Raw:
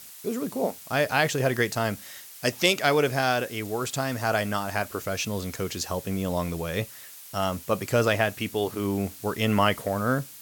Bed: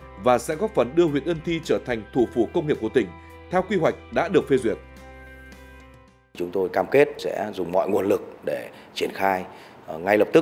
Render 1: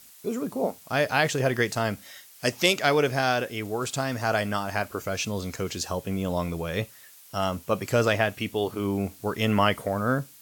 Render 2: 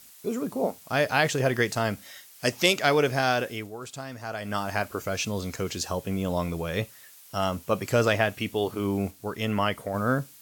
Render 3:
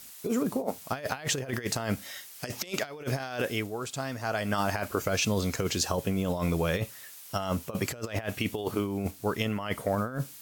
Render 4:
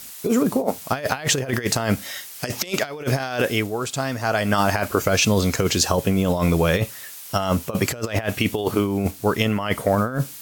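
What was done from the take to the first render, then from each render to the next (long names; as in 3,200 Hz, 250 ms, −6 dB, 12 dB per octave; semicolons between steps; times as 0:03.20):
noise reduction from a noise print 6 dB
0:03.52–0:04.59: duck −9.5 dB, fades 0.19 s; 0:09.11–0:09.94: clip gain −4 dB
compressor whose output falls as the input rises −29 dBFS, ratio −0.5
level +9 dB; brickwall limiter −3 dBFS, peak gain reduction 2.5 dB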